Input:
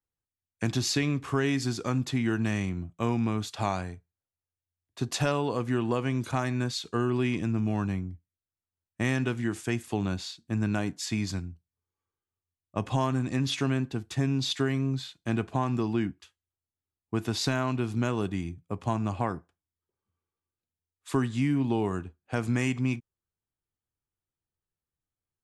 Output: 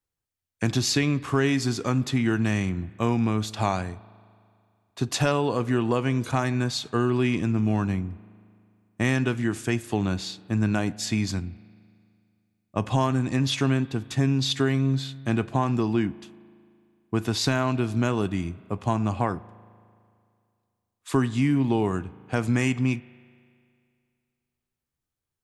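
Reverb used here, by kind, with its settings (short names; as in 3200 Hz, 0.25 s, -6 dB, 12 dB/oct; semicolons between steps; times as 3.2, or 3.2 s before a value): spring tank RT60 2.3 s, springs 37 ms, chirp 25 ms, DRR 19.5 dB; gain +4 dB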